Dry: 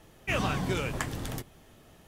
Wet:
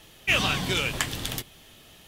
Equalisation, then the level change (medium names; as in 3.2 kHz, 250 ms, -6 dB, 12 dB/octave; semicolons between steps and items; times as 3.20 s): peaking EQ 3.3 kHz +12 dB 1.5 oct; treble shelf 7.6 kHz +11 dB; 0.0 dB